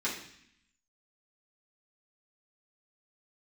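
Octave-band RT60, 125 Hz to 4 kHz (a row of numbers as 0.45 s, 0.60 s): 0.90 s, 0.95 s, 0.60 s, 0.70 s, 0.90 s, 0.85 s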